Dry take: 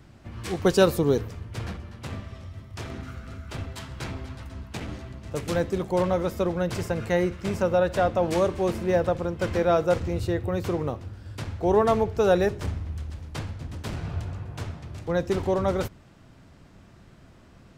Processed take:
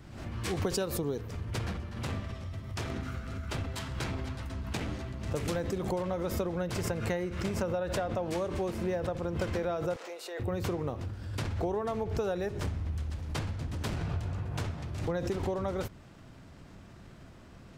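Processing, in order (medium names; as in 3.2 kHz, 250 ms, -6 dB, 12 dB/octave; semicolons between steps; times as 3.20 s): compression 12:1, threshold -29 dBFS, peak gain reduction 16 dB; 9.96–10.40 s: high-pass 500 Hz 24 dB/octave; swell ahead of each attack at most 59 dB/s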